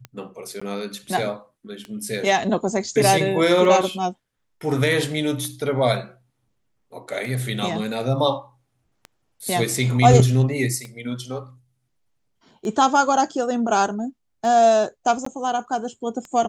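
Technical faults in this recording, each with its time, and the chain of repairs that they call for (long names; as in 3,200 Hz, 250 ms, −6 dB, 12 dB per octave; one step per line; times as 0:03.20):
scratch tick 33 1/3 rpm −20 dBFS
0:00.60–0:00.61: drop-out 15 ms
0:15.25–0:15.26: drop-out 14 ms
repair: click removal
repair the gap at 0:00.60, 15 ms
repair the gap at 0:15.25, 14 ms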